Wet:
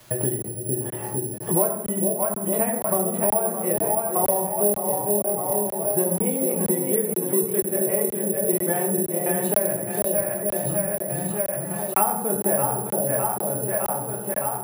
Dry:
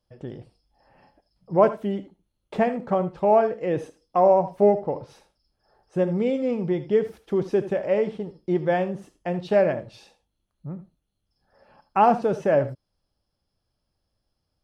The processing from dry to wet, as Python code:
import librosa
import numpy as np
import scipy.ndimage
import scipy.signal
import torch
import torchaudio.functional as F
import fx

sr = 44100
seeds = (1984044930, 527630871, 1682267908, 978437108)

p1 = scipy.signal.sosfilt(scipy.signal.butter(2, 42.0, 'highpass', fs=sr, output='sos'), x)
p2 = fx.low_shelf(p1, sr, hz=93.0, db=-6.0)
p3 = fx.hum_notches(p2, sr, base_hz=60, count=10)
p4 = p3 + fx.echo_split(p3, sr, split_hz=590.0, low_ms=454, high_ms=611, feedback_pct=52, wet_db=-5.5, dry=0)
p5 = fx.rev_fdn(p4, sr, rt60_s=0.63, lf_ratio=1.3, hf_ratio=0.5, size_ms=48.0, drr_db=-1.0)
p6 = fx.quant_dither(p5, sr, seeds[0], bits=12, dither='triangular')
p7 = (np.kron(scipy.signal.resample_poly(p6, 1, 4), np.eye(4)[0]) * 4)[:len(p6)]
p8 = fx.high_shelf(p7, sr, hz=4700.0, db=-8.5)
p9 = fx.buffer_crackle(p8, sr, first_s=0.42, period_s=0.48, block=1024, kind='zero')
p10 = fx.band_squash(p9, sr, depth_pct=100)
y = p10 * librosa.db_to_amplitude(-6.0)